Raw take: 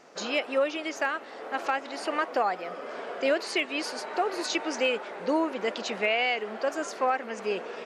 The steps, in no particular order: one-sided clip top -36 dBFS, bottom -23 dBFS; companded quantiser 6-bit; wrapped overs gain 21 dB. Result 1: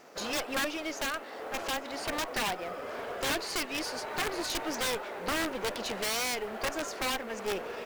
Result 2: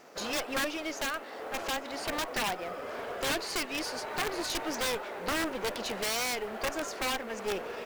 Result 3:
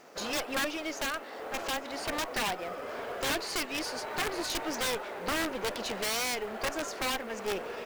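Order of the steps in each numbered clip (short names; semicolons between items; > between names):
wrapped overs > companded quantiser > one-sided clip; companded quantiser > wrapped overs > one-sided clip; wrapped overs > one-sided clip > companded quantiser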